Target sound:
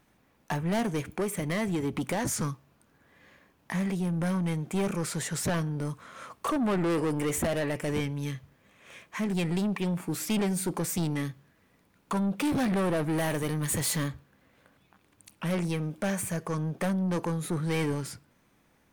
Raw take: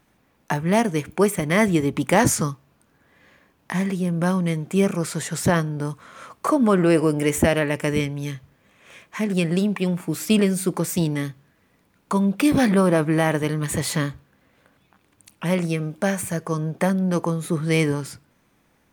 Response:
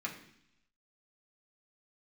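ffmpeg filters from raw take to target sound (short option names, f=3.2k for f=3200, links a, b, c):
-filter_complex "[0:a]asettb=1/sr,asplit=3[a][b][c];[a]atrim=end=1.124[d];[b]atrim=start=1.12:end=2.41,asetpts=PTS-STARTPTS,afade=t=in:d=0.004:c=qsin,afade=t=out:st=1.286:d=0.004:c=qsin,acompressor=threshold=-19dB:ratio=5[e];[c]atrim=start=2.406[f];[d][e]acrossfade=d=0.004:c1=hsin:c2=qsin[g];[g][f]acrossfade=d=0.004:c1=qsin:c2=hsin,asettb=1/sr,asplit=3[h][i][j];[h]atrim=end=13.044[k];[i]atrim=start=13.04:end=14.08,asetpts=PTS-STARTPTS,afade=t=in:d=0.004:c=qsin,afade=t=out:st=1.036:d=0.004:c=qsin,highshelf=f=7.3k:g=10[l];[j]atrim=start=14.076[m];[k][l]acrossfade=d=0.004:c1=hsin:c2=qsin[n];[n][m]acrossfade=d=0.004:c1=qsin:c2=hsin,asoftclip=type=tanh:threshold=-21dB,volume=-3dB"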